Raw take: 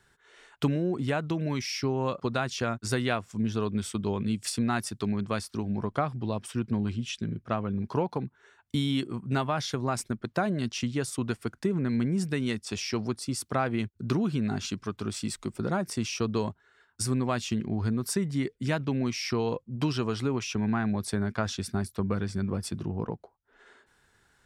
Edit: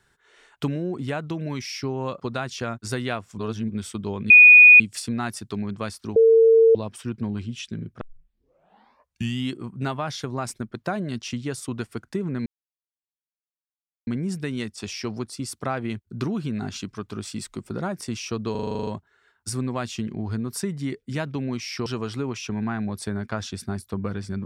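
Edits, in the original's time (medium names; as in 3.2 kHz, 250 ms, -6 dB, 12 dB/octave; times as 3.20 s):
3.38–3.70 s: reverse
4.30 s: add tone 2.47 kHz -6 dBFS 0.50 s
5.66–6.25 s: bleep 452 Hz -11 dBFS
7.51 s: tape start 1.52 s
11.96 s: insert silence 1.61 s
16.40 s: stutter 0.04 s, 10 plays
19.39–19.92 s: delete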